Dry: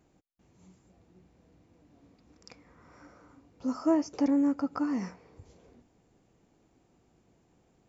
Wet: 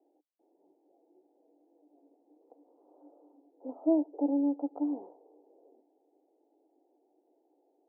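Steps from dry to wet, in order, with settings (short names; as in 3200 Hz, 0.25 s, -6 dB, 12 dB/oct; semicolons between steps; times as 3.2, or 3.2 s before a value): Chebyshev band-pass 290–850 Hz, order 4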